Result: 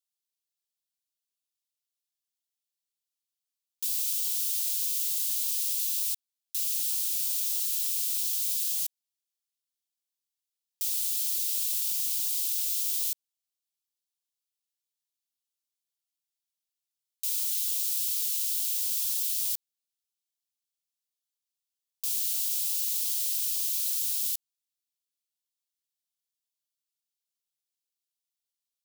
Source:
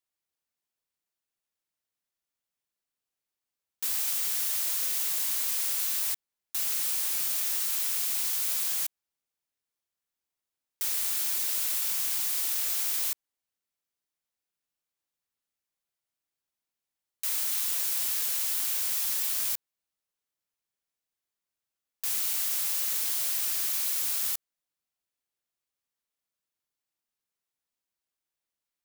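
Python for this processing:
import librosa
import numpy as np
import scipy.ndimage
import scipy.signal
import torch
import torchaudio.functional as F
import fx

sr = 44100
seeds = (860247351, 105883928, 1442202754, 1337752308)

y = scipy.signal.sosfilt(scipy.signal.cheby2(4, 60, 890.0, 'highpass', fs=sr, output='sos'), x)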